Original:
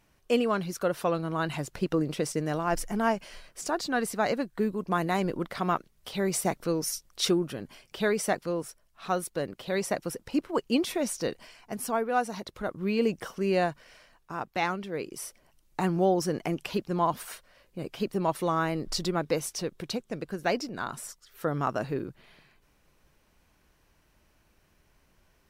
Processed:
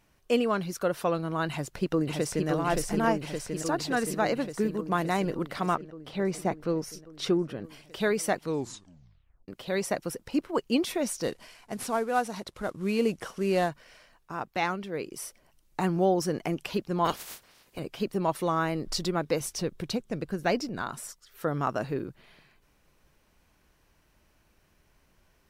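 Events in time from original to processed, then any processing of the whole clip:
1.50–2.48 s: echo throw 570 ms, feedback 75%, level -3 dB
5.75–7.64 s: low-pass 2 kHz 6 dB/octave
8.42 s: tape stop 1.06 s
11.23–13.69 s: CVSD coder 64 kbps
17.04–17.78 s: spectral peaks clipped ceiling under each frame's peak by 25 dB
19.40–20.82 s: bass shelf 190 Hz +7.5 dB

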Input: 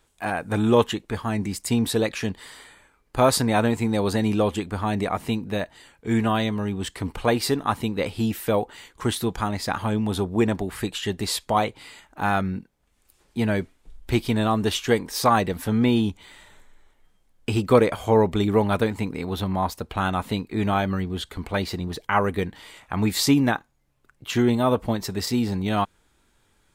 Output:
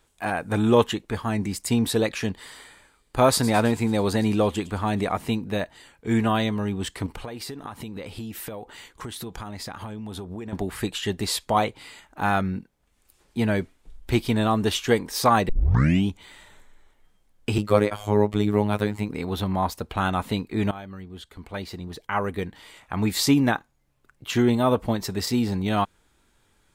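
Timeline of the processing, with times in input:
2.36–5.12 s: feedback echo behind a high-pass 109 ms, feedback 58%, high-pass 3.6 kHz, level -13 dB
7.06–10.53 s: compression 16:1, threshold -31 dBFS
15.49 s: tape start 0.59 s
17.58–19.09 s: robot voice 104 Hz
20.71–23.51 s: fade in, from -17 dB

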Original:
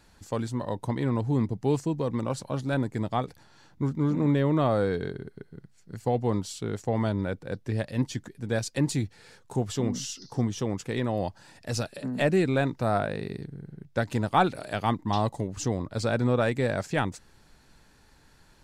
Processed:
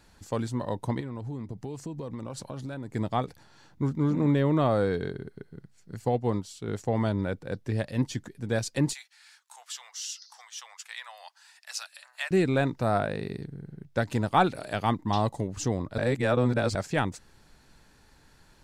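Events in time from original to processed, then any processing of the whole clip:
1.00–2.94 s: compression 16:1, threshold -32 dBFS
6.09–6.68 s: upward expansion, over -36 dBFS
8.93–12.31 s: Bessel high-pass 1.5 kHz, order 8
15.98–16.75 s: reverse

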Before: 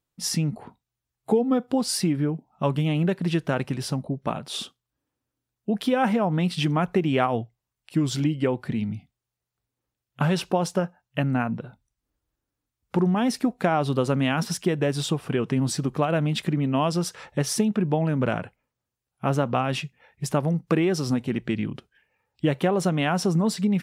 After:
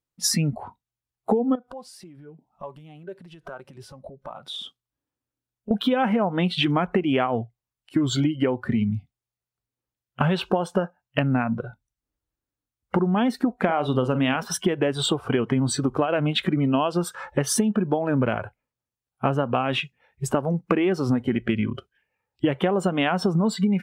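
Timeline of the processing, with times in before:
1.55–5.71 s: compression 10:1, threshold -37 dBFS
13.55–14.36 s: doubling 47 ms -12 dB
whole clip: spectral noise reduction 15 dB; compression 5:1, threshold -28 dBFS; trim +9 dB

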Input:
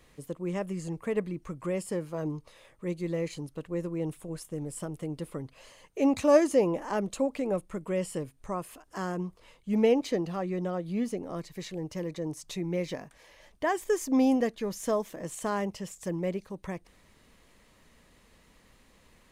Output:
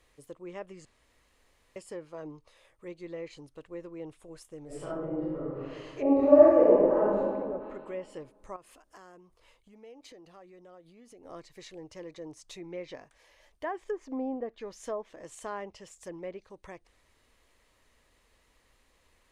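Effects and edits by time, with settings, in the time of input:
0.85–1.76 s: room tone
4.66–7.21 s: reverb throw, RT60 1.9 s, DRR -11.5 dB
8.56–11.25 s: compression, threshold -41 dBFS
whole clip: low-pass that closes with the level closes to 920 Hz, closed at -21.5 dBFS; peaking EQ 180 Hz -12 dB 1 oct; trim -5.5 dB

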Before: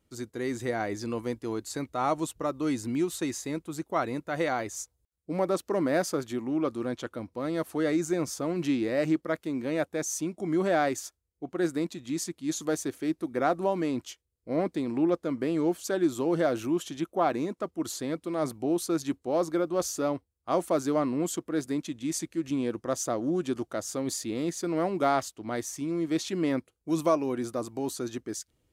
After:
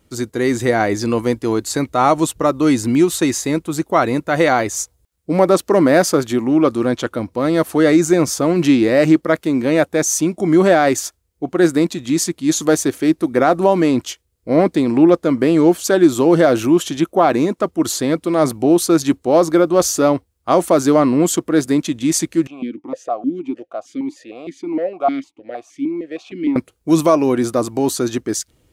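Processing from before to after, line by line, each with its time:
22.47–26.56 s: stepped vowel filter 6.5 Hz
whole clip: loudness maximiser +15.5 dB; trim -1 dB

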